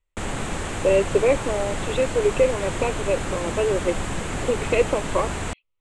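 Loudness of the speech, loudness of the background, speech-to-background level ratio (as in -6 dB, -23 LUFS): -24.0 LUFS, -29.0 LUFS, 5.0 dB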